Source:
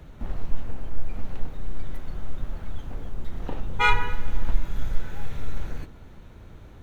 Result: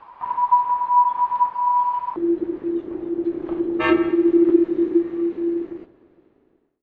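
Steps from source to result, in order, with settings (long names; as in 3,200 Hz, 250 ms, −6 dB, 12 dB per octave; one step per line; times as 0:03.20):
fade-out on the ending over 2.22 s
low-pass filter 2,600 Hz 12 dB per octave
ring modulation 980 Hz, from 0:02.16 340 Hz
level +2 dB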